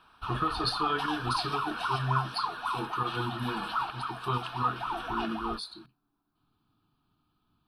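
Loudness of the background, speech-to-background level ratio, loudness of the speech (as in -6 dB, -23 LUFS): -34.5 LUFS, 0.5 dB, -34.0 LUFS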